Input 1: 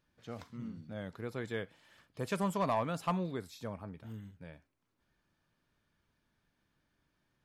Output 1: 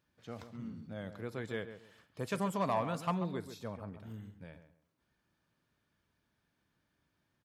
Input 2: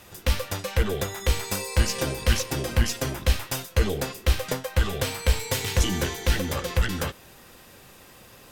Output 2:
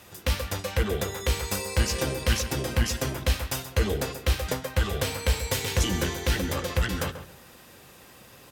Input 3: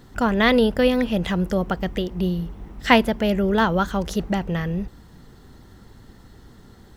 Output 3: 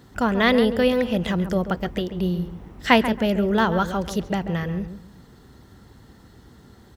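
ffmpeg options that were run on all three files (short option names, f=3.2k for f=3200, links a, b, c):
-filter_complex "[0:a]highpass=51,asplit=2[a][b];[b]adelay=137,lowpass=f=1.8k:p=1,volume=-10dB,asplit=2[c][d];[d]adelay=137,lowpass=f=1.8k:p=1,volume=0.25,asplit=2[e][f];[f]adelay=137,lowpass=f=1.8k:p=1,volume=0.25[g];[a][c][e][g]amix=inputs=4:normalize=0,volume=-1dB"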